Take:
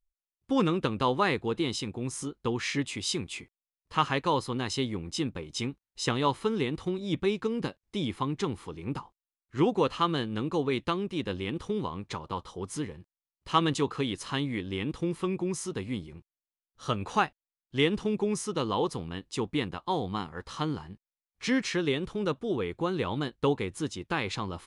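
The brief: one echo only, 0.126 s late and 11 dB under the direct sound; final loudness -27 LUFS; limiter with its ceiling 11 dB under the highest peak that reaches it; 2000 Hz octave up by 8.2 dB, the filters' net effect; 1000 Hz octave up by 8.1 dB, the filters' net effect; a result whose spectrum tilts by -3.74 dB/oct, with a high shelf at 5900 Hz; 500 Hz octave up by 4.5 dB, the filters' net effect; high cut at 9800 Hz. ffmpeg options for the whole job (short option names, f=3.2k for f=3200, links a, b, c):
-af "lowpass=9.8k,equalizer=f=500:t=o:g=4,equalizer=f=1k:t=o:g=6.5,equalizer=f=2k:t=o:g=8.5,highshelf=f=5.9k:g=-4,alimiter=limit=-14.5dB:level=0:latency=1,aecho=1:1:126:0.282,volume=1dB"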